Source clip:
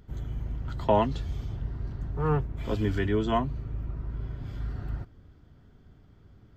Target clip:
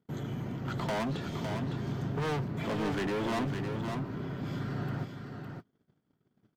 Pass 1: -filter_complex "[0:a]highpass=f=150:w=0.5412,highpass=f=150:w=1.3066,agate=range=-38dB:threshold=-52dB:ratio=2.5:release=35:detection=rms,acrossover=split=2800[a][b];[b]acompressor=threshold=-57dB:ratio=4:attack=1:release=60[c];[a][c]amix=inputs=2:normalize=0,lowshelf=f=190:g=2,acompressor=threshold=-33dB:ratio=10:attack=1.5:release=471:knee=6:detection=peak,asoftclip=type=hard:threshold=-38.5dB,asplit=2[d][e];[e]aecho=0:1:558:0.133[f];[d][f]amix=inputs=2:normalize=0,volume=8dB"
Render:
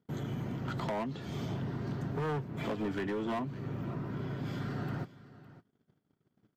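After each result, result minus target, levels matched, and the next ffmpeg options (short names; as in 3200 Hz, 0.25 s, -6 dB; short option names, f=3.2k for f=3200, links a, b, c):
compressor: peak gain reduction +10.5 dB; echo-to-direct -11.5 dB
-filter_complex "[0:a]highpass=f=150:w=0.5412,highpass=f=150:w=1.3066,agate=range=-38dB:threshold=-52dB:ratio=2.5:release=35:detection=rms,acrossover=split=2800[a][b];[b]acompressor=threshold=-57dB:ratio=4:attack=1:release=60[c];[a][c]amix=inputs=2:normalize=0,lowshelf=f=190:g=2,acompressor=threshold=-21.5dB:ratio=10:attack=1.5:release=471:knee=6:detection=peak,asoftclip=type=hard:threshold=-38.5dB,asplit=2[d][e];[e]aecho=0:1:558:0.133[f];[d][f]amix=inputs=2:normalize=0,volume=8dB"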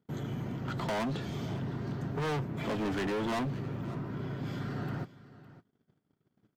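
echo-to-direct -11.5 dB
-filter_complex "[0:a]highpass=f=150:w=0.5412,highpass=f=150:w=1.3066,agate=range=-38dB:threshold=-52dB:ratio=2.5:release=35:detection=rms,acrossover=split=2800[a][b];[b]acompressor=threshold=-57dB:ratio=4:attack=1:release=60[c];[a][c]amix=inputs=2:normalize=0,lowshelf=f=190:g=2,acompressor=threshold=-21.5dB:ratio=10:attack=1.5:release=471:knee=6:detection=peak,asoftclip=type=hard:threshold=-38.5dB,asplit=2[d][e];[e]aecho=0:1:558:0.501[f];[d][f]amix=inputs=2:normalize=0,volume=8dB"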